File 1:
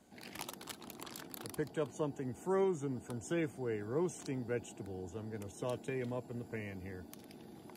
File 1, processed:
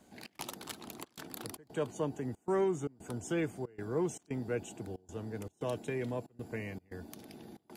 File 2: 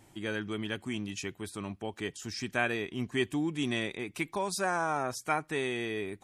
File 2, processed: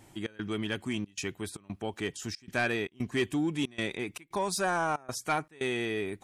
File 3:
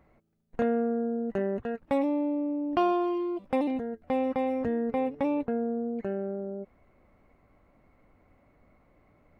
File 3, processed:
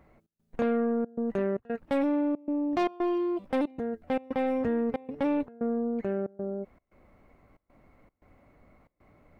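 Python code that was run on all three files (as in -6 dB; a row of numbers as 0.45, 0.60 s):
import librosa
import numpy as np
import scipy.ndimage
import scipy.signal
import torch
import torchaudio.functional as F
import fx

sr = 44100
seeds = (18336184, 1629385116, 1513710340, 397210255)

y = fx.step_gate(x, sr, bpm=115, pattern='xx.xxxxx.x', floor_db=-24.0, edge_ms=4.5)
y = 10.0 ** (-23.0 / 20.0) * np.tanh(y / 10.0 ** (-23.0 / 20.0))
y = y * librosa.db_to_amplitude(3.0)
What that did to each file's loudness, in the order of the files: +2.0, +1.0, -0.5 LU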